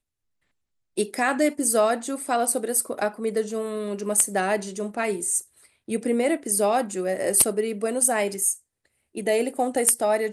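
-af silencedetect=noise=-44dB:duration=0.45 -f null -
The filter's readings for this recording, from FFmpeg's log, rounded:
silence_start: 0.00
silence_end: 0.97 | silence_duration: 0.97
silence_start: 8.58
silence_end: 9.15 | silence_duration: 0.57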